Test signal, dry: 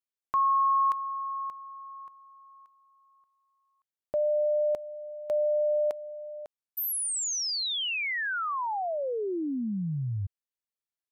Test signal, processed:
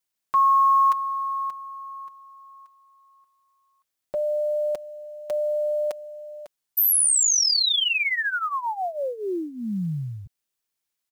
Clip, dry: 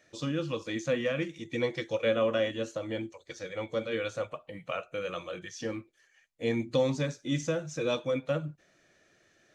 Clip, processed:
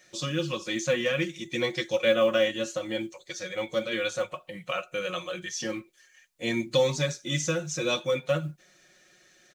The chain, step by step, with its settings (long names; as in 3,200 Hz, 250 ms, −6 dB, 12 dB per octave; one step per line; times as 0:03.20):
high-shelf EQ 2,300 Hz +10 dB
comb filter 5.5 ms, depth 68%
log-companded quantiser 8 bits